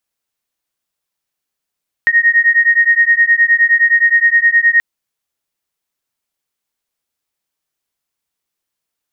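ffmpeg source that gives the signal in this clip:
-f lavfi -i "aevalsrc='0.282*(sin(2*PI*1860*t)+sin(2*PI*1869.6*t))':d=2.73:s=44100"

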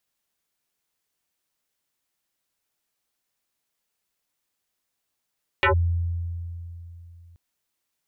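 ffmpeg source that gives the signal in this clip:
-f lavfi -i "aevalsrc='0.178*pow(10,-3*t/3.17)*sin(2*PI*85.5*t+6.3*clip(1-t/0.11,0,1)*sin(2*PI*5.5*85.5*t))':d=1.73:s=44100"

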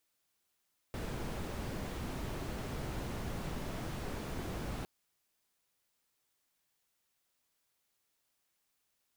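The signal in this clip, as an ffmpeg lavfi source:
-f lavfi -i "anoisesrc=c=brown:a=0.0525:d=3.91:r=44100:seed=1"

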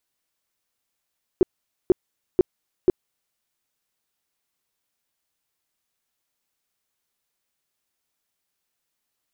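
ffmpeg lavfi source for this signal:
-f lavfi -i "aevalsrc='0.299*sin(2*PI*366*mod(t,0.49))*lt(mod(t,0.49),7/366)':d=1.96:s=44100"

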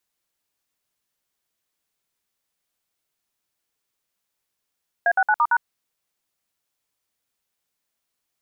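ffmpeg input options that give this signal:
-f lavfi -i "aevalsrc='0.133*clip(min(mod(t,0.113),0.056-mod(t,0.113))/0.002,0,1)*(eq(floor(t/0.113),0)*(sin(2*PI*697*mod(t,0.113))+sin(2*PI*1633*mod(t,0.113)))+eq(floor(t/0.113),1)*(sin(2*PI*770*mod(t,0.113))+sin(2*PI*1477*mod(t,0.113)))+eq(floor(t/0.113),2)*(sin(2*PI*852*mod(t,0.113))+sin(2*PI*1477*mod(t,0.113)))+eq(floor(t/0.113),3)*(sin(2*PI*941*mod(t,0.113))+sin(2*PI*1209*mod(t,0.113)))+eq(floor(t/0.113),4)*(sin(2*PI*941*mod(t,0.113))+sin(2*PI*1477*mod(t,0.113))))':d=0.565:s=44100"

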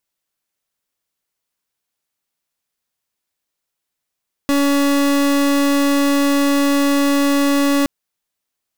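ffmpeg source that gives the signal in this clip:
-f lavfi -i "aevalsrc='0.178*(2*lt(mod(282*t,1),0.37)-1)':d=3.37:s=44100"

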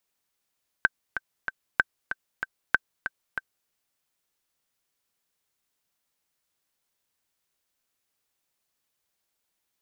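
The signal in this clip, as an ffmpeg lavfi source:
-f lavfi -i "aevalsrc='pow(10,(-5.5-10*gte(mod(t,3*60/190),60/190))/20)*sin(2*PI*1550*mod(t,60/190))*exp(-6.91*mod(t,60/190)/0.03)':d=2.84:s=44100"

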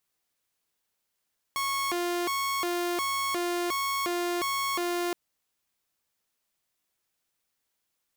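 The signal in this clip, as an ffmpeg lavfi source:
-f lavfi -i "aevalsrc='0.0596*(2*mod((725*t+375/1.4*(0.5-abs(mod(1.4*t,1)-0.5))),1)-1)':d=3.57:s=44100"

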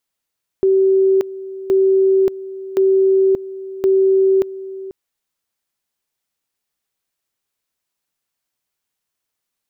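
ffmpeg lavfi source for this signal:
-f lavfi -i "aevalsrc='pow(10,(-10-16.5*gte(mod(t,1.07),0.58))/20)*sin(2*PI*384*t)':d=4.28:s=44100"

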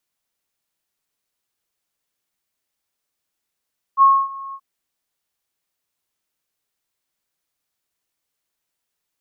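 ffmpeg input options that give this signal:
-f lavfi -i "aevalsrc='0.447*sin(2*PI*1090*t)':d=0.629:s=44100,afade=t=in:d=0.051,afade=t=out:st=0.051:d=0.259:silence=0.0794,afade=t=out:st=0.57:d=0.059"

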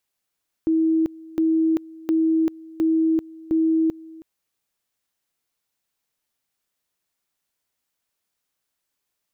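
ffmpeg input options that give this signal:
-f lavfi -i "aevalsrc='pow(10,(-16-22*gte(mod(t,0.71),0.39))/20)*sin(2*PI*322*t)':d=3.55:s=44100"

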